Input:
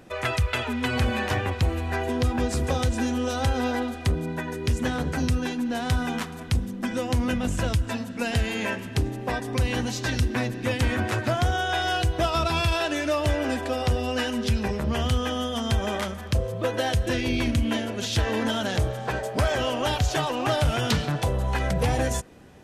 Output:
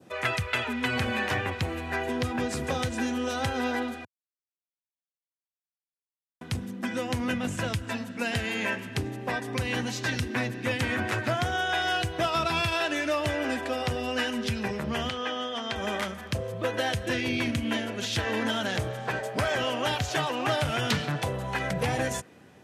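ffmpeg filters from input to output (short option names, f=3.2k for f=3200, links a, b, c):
-filter_complex "[0:a]asettb=1/sr,asplit=3[a][b][c];[a]atrim=end=15.094[d];[b]atrim=start=15.09:end=15.76,asetpts=PTS-STARTPTS,afade=t=in:d=0.004:c=qsin,afade=t=out:st=0.666:d=0.004:c=qsin,acrossover=split=270 6000:gain=0.178 1 0.1[e][f][g];[e][f][g]amix=inputs=3:normalize=0[h];[c]atrim=start=15.756[i];[d][h]acrossfade=d=0.004:c1=hsin:c2=qsin[j];[j][i]acrossfade=d=0.004:c1=qsin:c2=hsin,asplit=3[k][l][m];[k]atrim=end=4.05,asetpts=PTS-STARTPTS,afade=t=out:st=4.046:d=0.004:c=hsin[n];[l]atrim=start=4.05:end=6.41,asetpts=PTS-STARTPTS,volume=0[o];[m]atrim=start=6.41,asetpts=PTS-STARTPTS,afade=t=in:d=0.004:c=hsin[p];[n][o][p]concat=n=3:v=0:a=1,adynamicequalizer=threshold=0.00794:dfrequency=2000:dqfactor=1:tfrequency=2000:tqfactor=1:attack=5:release=100:ratio=0.375:range=2.5:mode=boostabove:tftype=bell,highpass=f=97:w=0.5412,highpass=f=97:w=1.3066,volume=-3.5dB"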